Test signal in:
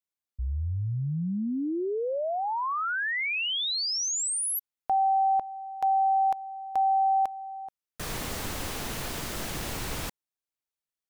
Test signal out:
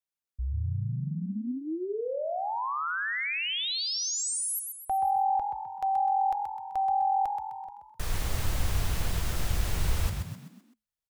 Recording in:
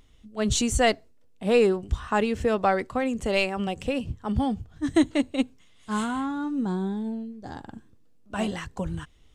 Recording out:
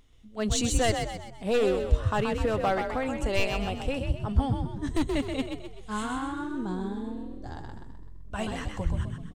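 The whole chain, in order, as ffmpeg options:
ffmpeg -i in.wav -filter_complex "[0:a]volume=16.5dB,asoftclip=hard,volume=-16.5dB,asubboost=boost=6:cutoff=81,asplit=6[link_01][link_02][link_03][link_04][link_05][link_06];[link_02]adelay=128,afreqshift=43,volume=-6dB[link_07];[link_03]adelay=256,afreqshift=86,volume=-13.1dB[link_08];[link_04]adelay=384,afreqshift=129,volume=-20.3dB[link_09];[link_05]adelay=512,afreqshift=172,volume=-27.4dB[link_10];[link_06]adelay=640,afreqshift=215,volume=-34.5dB[link_11];[link_01][link_07][link_08][link_09][link_10][link_11]amix=inputs=6:normalize=0,volume=-3dB" out.wav

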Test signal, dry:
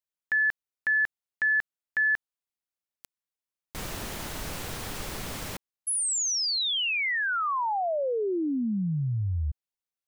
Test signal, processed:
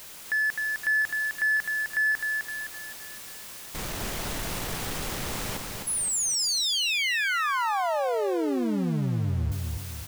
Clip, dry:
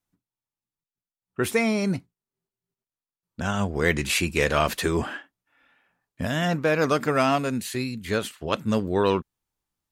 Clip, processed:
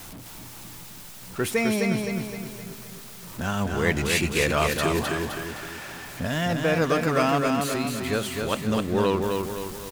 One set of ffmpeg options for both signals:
ffmpeg -i in.wav -af "aeval=exprs='val(0)+0.5*0.0251*sgn(val(0))':channel_layout=same,aecho=1:1:258|516|774|1032|1290|1548:0.631|0.297|0.139|0.0655|0.0308|0.0145,volume=-2.5dB" out.wav

